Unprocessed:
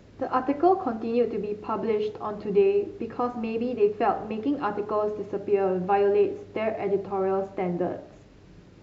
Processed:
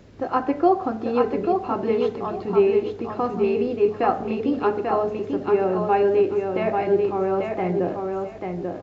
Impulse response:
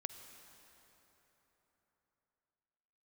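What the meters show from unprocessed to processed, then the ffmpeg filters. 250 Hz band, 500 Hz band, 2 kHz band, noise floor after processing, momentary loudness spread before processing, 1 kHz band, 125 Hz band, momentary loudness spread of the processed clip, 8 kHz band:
+4.0 dB, +4.0 dB, +4.0 dB, -36 dBFS, 8 LU, +4.0 dB, +4.5 dB, 7 LU, no reading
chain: -af "aecho=1:1:840|1680|2520:0.596|0.137|0.0315,volume=1.33"

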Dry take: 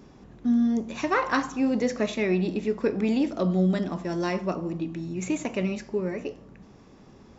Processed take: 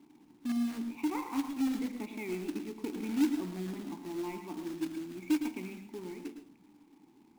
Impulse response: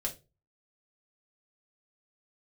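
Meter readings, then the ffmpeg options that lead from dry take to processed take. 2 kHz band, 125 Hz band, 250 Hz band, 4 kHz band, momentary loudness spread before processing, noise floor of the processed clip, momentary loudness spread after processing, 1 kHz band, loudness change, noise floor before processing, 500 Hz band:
-14.0 dB, -17.0 dB, -7.5 dB, -8.0 dB, 8 LU, -62 dBFS, 12 LU, -12.5 dB, -9.0 dB, -52 dBFS, -14.5 dB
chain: -filter_complex "[0:a]asplit=3[s0][s1][s2];[s0]bandpass=f=300:t=q:w=8,volume=1[s3];[s1]bandpass=f=870:t=q:w=8,volume=0.501[s4];[s2]bandpass=f=2240:t=q:w=8,volume=0.355[s5];[s3][s4][s5]amix=inputs=3:normalize=0,acrusher=bits=3:mode=log:mix=0:aa=0.000001,asplit=2[s6][s7];[1:a]atrim=start_sample=2205,adelay=109[s8];[s7][s8]afir=irnorm=-1:irlink=0,volume=0.316[s9];[s6][s9]amix=inputs=2:normalize=0"

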